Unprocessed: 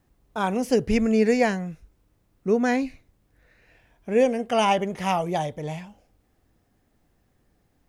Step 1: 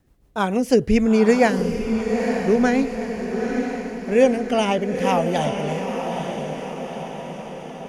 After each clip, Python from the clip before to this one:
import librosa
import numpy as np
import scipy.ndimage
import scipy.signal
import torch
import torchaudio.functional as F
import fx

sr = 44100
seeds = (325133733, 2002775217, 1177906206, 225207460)

y = fx.rotary_switch(x, sr, hz=6.7, then_hz=0.75, switch_at_s=3.14)
y = fx.echo_diffused(y, sr, ms=910, feedback_pct=58, wet_db=-6.0)
y = F.gain(torch.from_numpy(y), 5.5).numpy()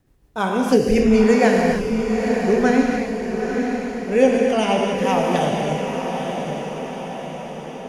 y = fx.rev_gated(x, sr, seeds[0], gate_ms=320, shape='flat', drr_db=0.0)
y = F.gain(torch.from_numpy(y), -1.0).numpy()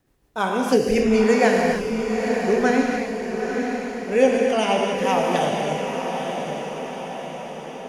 y = fx.low_shelf(x, sr, hz=210.0, db=-9.0)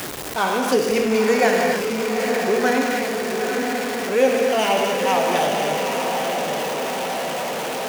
y = x + 0.5 * 10.0 ** (-21.5 / 20.0) * np.sign(x)
y = fx.highpass(y, sr, hz=340.0, slope=6)